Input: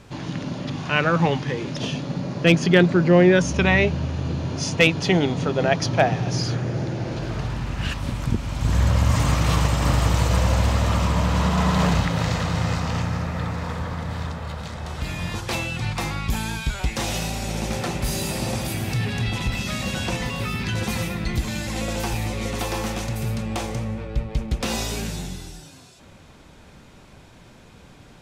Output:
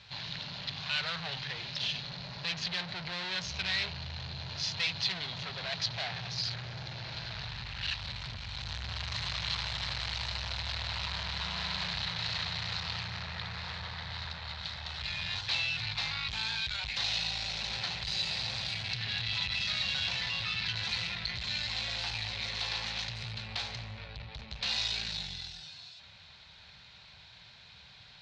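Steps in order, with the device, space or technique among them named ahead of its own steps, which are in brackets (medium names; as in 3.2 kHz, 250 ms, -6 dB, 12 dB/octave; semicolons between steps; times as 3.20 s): scooped metal amplifier (valve stage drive 29 dB, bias 0.55; cabinet simulation 89–4600 Hz, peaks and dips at 510 Hz -4 dB, 1.2 kHz -5 dB, 4.1 kHz +10 dB; amplifier tone stack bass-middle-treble 10-0-10); trim +5 dB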